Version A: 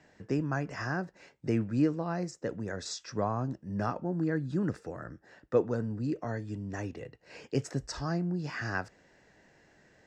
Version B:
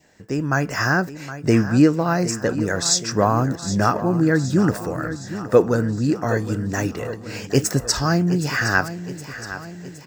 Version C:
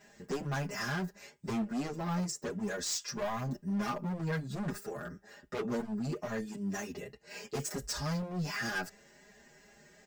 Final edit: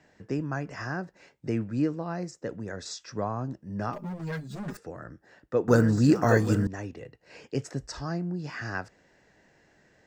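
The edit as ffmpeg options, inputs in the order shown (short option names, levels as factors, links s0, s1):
-filter_complex "[0:a]asplit=3[s0][s1][s2];[s0]atrim=end=3.932[s3];[2:a]atrim=start=3.928:end=4.772[s4];[s1]atrim=start=4.768:end=5.682[s5];[1:a]atrim=start=5.678:end=6.672[s6];[s2]atrim=start=6.668[s7];[s3][s4]acrossfade=d=0.004:c1=hsin:c2=hsin[s8];[s8][s5]acrossfade=d=0.004:c1=hsin:c2=hsin[s9];[s9][s6]acrossfade=d=0.004:c1=hsin:c2=hsin[s10];[s10][s7]acrossfade=d=0.004:c1=hsin:c2=hsin"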